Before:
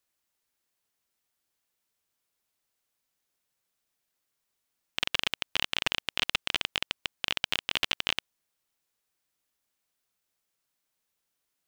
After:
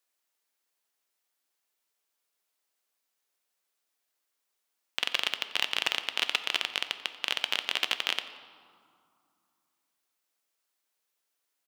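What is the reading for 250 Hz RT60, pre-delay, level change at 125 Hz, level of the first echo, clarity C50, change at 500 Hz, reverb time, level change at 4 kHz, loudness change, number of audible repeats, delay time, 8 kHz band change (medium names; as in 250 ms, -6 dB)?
3.0 s, 5 ms, under -10 dB, -19.5 dB, 11.5 dB, -0.5 dB, 2.4 s, +0.5 dB, +0.5 dB, 1, 89 ms, 0.0 dB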